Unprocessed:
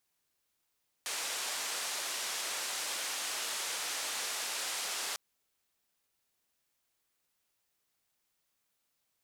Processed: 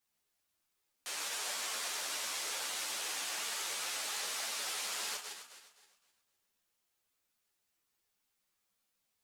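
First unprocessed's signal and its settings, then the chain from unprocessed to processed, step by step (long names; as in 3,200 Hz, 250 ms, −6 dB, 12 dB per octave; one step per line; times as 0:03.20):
band-limited noise 490–8,600 Hz, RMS −37 dBFS 4.10 s
feedback delay that plays each chunk backwards 130 ms, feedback 56%, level −6 dB
string-ensemble chorus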